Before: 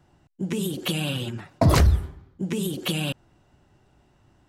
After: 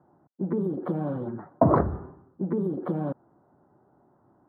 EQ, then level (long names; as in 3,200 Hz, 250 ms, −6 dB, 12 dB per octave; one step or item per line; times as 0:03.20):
high-pass filter 200 Hz 12 dB per octave
inverse Chebyshev low-pass filter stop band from 2,500 Hz, stop band 40 dB
+2.5 dB